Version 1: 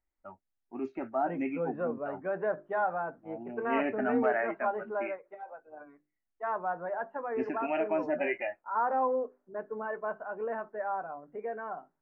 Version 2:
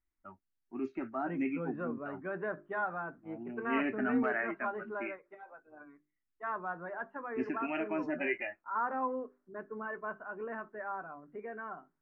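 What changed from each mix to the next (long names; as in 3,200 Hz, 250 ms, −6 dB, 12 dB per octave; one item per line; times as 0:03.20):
master: add flat-topped bell 640 Hz −8.5 dB 1.2 octaves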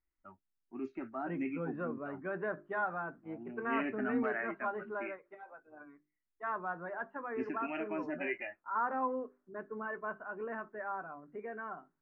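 first voice −3.5 dB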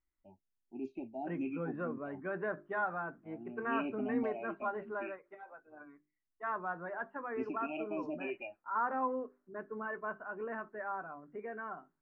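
first voice: add Chebyshev band-stop filter 880–2,400 Hz, order 5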